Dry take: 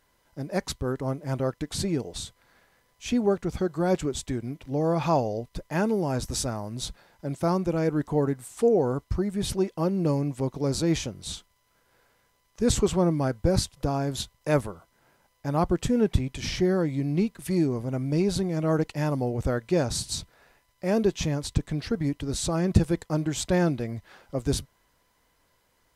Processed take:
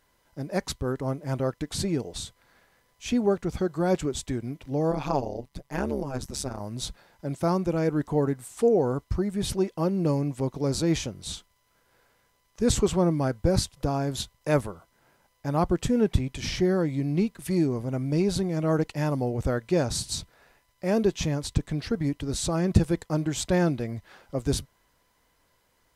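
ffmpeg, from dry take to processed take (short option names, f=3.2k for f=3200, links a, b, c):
-filter_complex "[0:a]asplit=3[a][b][c];[a]afade=t=out:st=4.9:d=0.02[d];[b]tremolo=f=140:d=0.974,afade=t=in:st=4.9:d=0.02,afade=t=out:st=6.59:d=0.02[e];[c]afade=t=in:st=6.59:d=0.02[f];[d][e][f]amix=inputs=3:normalize=0"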